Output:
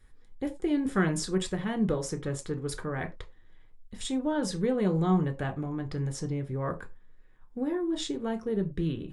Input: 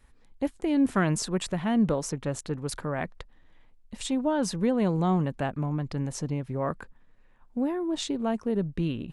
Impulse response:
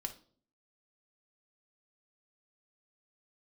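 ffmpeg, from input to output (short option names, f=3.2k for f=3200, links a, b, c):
-filter_complex "[1:a]atrim=start_sample=2205,afade=t=out:st=0.24:d=0.01,atrim=end_sample=11025,asetrate=74970,aresample=44100[a];[0:a][a]afir=irnorm=-1:irlink=0,volume=3.5dB"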